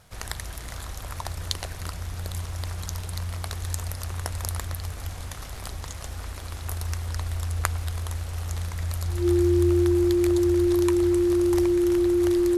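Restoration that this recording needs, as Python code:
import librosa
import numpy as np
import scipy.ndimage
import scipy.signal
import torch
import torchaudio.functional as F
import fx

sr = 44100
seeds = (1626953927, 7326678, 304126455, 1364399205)

y = fx.fix_declick_ar(x, sr, threshold=6.5)
y = fx.notch(y, sr, hz=350.0, q=30.0)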